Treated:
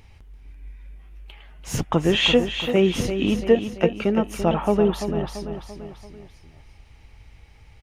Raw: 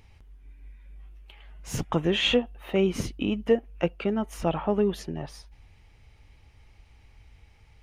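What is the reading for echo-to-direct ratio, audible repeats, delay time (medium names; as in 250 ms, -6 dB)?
-7.5 dB, 4, 339 ms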